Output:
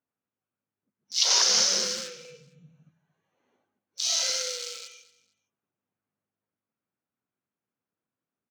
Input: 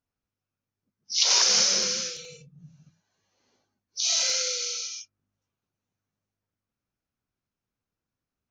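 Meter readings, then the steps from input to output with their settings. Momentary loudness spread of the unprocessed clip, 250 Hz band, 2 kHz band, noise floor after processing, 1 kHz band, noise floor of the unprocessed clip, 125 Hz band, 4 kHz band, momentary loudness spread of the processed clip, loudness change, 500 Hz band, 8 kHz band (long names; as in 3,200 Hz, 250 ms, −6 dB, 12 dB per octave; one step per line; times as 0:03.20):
19 LU, −1.5 dB, −2.0 dB, below −85 dBFS, 0.0 dB, below −85 dBFS, −4.0 dB, −1.0 dB, 18 LU, −1.0 dB, 0.0 dB, −2.0 dB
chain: adaptive Wiener filter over 9 samples
high-pass filter 180 Hz 12 dB per octave
dynamic equaliser 2,400 Hz, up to −6 dB, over −50 dBFS, Q 6.7
repeating echo 229 ms, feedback 25%, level −18 dB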